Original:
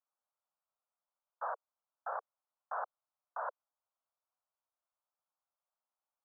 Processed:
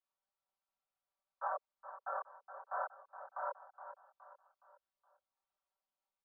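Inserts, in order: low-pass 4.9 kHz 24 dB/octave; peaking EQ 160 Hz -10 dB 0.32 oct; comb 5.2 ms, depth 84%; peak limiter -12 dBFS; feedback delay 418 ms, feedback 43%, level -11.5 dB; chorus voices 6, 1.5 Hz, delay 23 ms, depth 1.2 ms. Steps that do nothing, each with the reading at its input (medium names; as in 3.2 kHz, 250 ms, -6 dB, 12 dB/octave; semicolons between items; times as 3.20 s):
low-pass 4.9 kHz: input has nothing above 1.8 kHz; peaking EQ 160 Hz: input has nothing below 400 Hz; peak limiter -12 dBFS: peak at its input -24.0 dBFS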